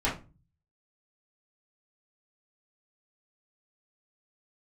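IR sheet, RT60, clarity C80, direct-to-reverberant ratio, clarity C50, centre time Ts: 0.30 s, 15.5 dB, −9.5 dB, 8.0 dB, 28 ms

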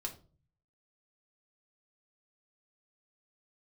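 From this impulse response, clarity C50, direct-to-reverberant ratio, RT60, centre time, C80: 13.0 dB, 0.0 dB, 0.40 s, 11 ms, 18.0 dB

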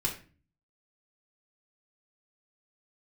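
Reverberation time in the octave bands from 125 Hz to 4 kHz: 0.70, 0.60, 0.40, 0.35, 0.35, 0.30 seconds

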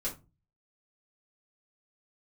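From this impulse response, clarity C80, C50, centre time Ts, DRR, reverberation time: 19.5 dB, 12.0 dB, 18 ms, −7.0 dB, non-exponential decay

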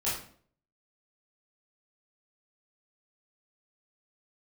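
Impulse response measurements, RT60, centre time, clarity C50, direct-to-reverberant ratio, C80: 0.55 s, 46 ms, 3.5 dB, −10.0 dB, 8.0 dB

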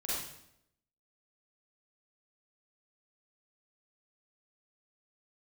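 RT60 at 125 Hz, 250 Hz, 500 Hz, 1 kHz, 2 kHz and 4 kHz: 0.85, 0.90, 0.80, 0.70, 0.70, 0.65 seconds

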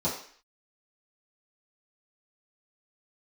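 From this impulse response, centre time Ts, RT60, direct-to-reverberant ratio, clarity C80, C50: 32 ms, 0.50 s, −10.5 dB, 10.0 dB, 6.0 dB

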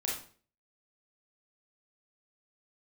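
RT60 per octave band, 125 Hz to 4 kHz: 0.50, 0.50, 0.50, 0.40, 0.40, 0.35 seconds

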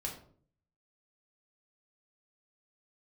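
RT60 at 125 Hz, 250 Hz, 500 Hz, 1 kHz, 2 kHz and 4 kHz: 0.80, 0.65, 0.60, 0.45, 0.35, 0.30 seconds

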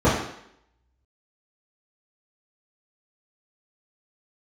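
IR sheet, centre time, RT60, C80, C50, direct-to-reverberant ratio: 47 ms, 0.70 s, 6.5 dB, 3.5 dB, −12.0 dB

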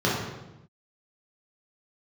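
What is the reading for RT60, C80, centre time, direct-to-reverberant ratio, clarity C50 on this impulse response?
0.95 s, 4.0 dB, 66 ms, −6.5 dB, 1.0 dB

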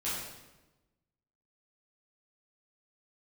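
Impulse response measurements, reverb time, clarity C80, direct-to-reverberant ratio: 1.1 s, 3.0 dB, −10.5 dB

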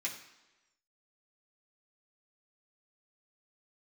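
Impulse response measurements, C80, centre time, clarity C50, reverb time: 11.0 dB, 22 ms, 8.5 dB, 1.1 s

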